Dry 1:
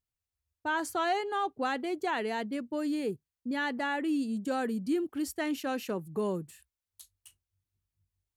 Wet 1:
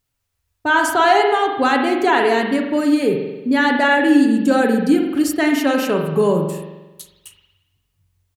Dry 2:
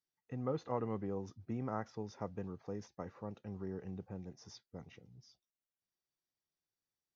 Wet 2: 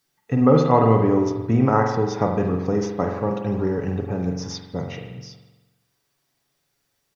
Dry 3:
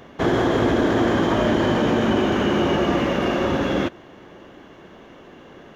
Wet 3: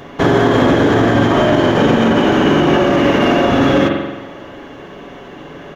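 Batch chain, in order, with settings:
spring reverb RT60 1.1 s, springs 44 ms, chirp 40 ms, DRR 2.5 dB
brickwall limiter −12.5 dBFS
comb filter 7.1 ms, depth 32%
normalise the peak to −1.5 dBFS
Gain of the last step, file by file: +14.0, +20.0, +9.0 decibels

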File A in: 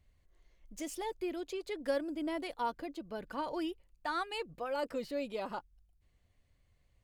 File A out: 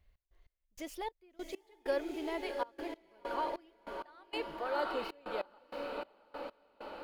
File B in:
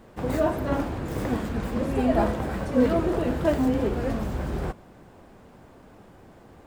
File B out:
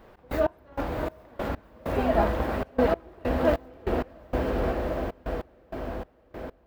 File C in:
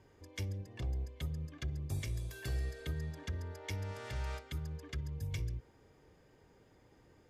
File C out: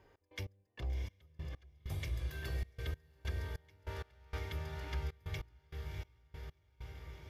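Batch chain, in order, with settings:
graphic EQ with 10 bands 125 Hz −7 dB, 250 Hz −6 dB, 8,000 Hz −11 dB
feedback delay with all-pass diffusion 707 ms, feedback 64%, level −4 dB
gate pattern "x.x..xx..x..xxxx" 97 BPM −24 dB
level +1 dB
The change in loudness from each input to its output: −1.5, −3.0, −3.0 LU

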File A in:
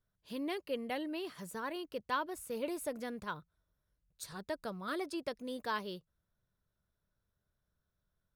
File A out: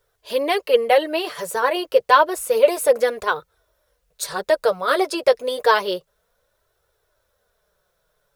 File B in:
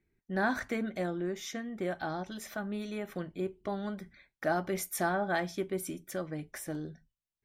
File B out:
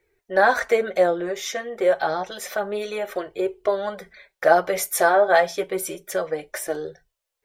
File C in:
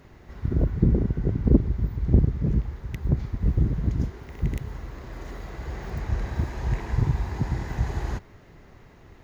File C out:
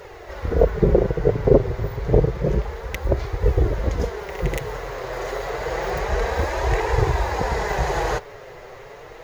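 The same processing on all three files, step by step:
flanger 0.29 Hz, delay 2.1 ms, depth 6.1 ms, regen −20%
low shelf with overshoot 350 Hz −10.5 dB, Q 3
normalise the peak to −2 dBFS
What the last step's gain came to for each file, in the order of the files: +22.0, +15.0, +16.5 decibels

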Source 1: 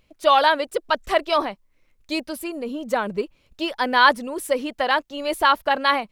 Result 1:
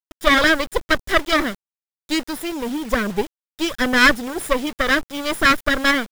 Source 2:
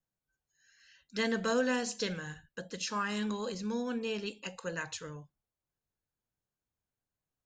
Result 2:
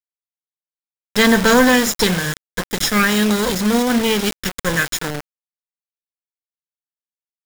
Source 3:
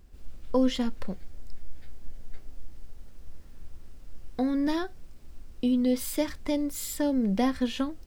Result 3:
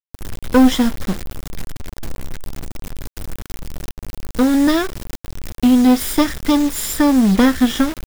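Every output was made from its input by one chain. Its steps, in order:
lower of the sound and its delayed copy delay 0.56 ms
bit reduction 7 bits
normalise the peak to −1.5 dBFS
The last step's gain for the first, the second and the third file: +4.5, +19.0, +13.0 decibels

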